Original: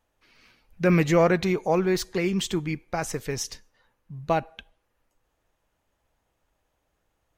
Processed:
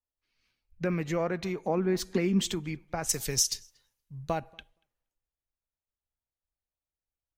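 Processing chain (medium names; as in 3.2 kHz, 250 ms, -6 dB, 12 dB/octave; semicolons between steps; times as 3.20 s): 3.09–4.54 s: tone controls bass +1 dB, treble +10 dB; compression 4:1, threshold -29 dBFS, peak gain reduction 12 dB; 1.64–2.50 s: peaking EQ 240 Hz +11.5 dB 0.59 oct; filtered feedback delay 235 ms, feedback 18%, low-pass 4.9 kHz, level -24 dB; three bands expanded up and down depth 70%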